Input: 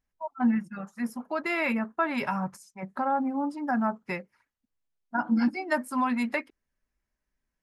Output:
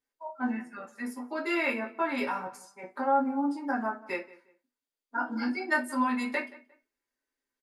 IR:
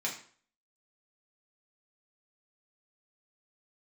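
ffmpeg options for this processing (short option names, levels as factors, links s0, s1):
-filter_complex "[0:a]asplit=2[s0][s1];[s1]adelay=177,lowpass=f=2700:p=1,volume=0.112,asplit=2[s2][s3];[s3]adelay=177,lowpass=f=2700:p=1,volume=0.28[s4];[s0][s2][s4]amix=inputs=3:normalize=0[s5];[1:a]atrim=start_sample=2205,asetrate=88200,aresample=44100[s6];[s5][s6]afir=irnorm=-1:irlink=0,volume=1.26"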